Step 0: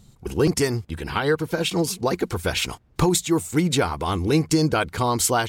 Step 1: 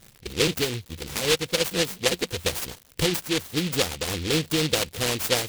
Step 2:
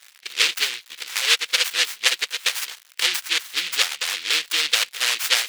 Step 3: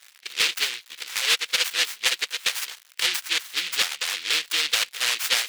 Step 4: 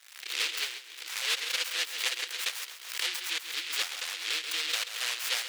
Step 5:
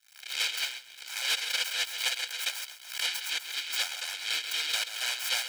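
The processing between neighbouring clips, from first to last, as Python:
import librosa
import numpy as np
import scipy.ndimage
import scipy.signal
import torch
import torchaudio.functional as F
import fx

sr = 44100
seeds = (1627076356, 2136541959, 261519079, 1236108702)

y1 = fx.peak_eq(x, sr, hz=510.0, db=11.5, octaves=0.3)
y1 = fx.dmg_crackle(y1, sr, seeds[0], per_s=250.0, level_db=-27.0)
y1 = fx.noise_mod_delay(y1, sr, seeds[1], noise_hz=3100.0, depth_ms=0.28)
y1 = y1 * librosa.db_to_amplitude(-6.5)
y2 = scipy.signal.sosfilt(scipy.signal.cheby1(2, 1.0, 1700.0, 'highpass', fs=sr, output='sos'), y1)
y2 = fx.high_shelf(y2, sr, hz=7700.0, db=-8.0)
y2 = y2 * librosa.db_to_amplitude(8.5)
y3 = np.clip(y2, -10.0 ** (-11.5 / 20.0), 10.0 ** (-11.5 / 20.0))
y3 = y3 * librosa.db_to_amplitude(-2.0)
y4 = scipy.signal.sosfilt(scipy.signal.ellip(4, 1.0, 40, 300.0, 'highpass', fs=sr, output='sos'), y3)
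y4 = fx.echo_feedback(y4, sr, ms=134, feedback_pct=33, wet_db=-12.0)
y4 = fx.pre_swell(y4, sr, db_per_s=78.0)
y4 = y4 * librosa.db_to_amplitude(-8.0)
y5 = y4 + 0.82 * np.pad(y4, (int(1.3 * sr / 1000.0), 0))[:len(y4)]
y5 = fx.leveller(y5, sr, passes=1)
y5 = fx.band_widen(y5, sr, depth_pct=40)
y5 = y5 * librosa.db_to_amplitude(-4.5)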